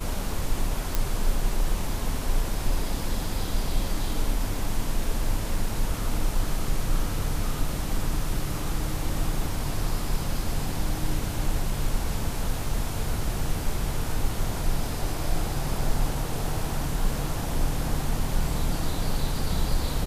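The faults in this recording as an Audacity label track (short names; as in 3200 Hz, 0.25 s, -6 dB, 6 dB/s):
0.950000	0.950000	pop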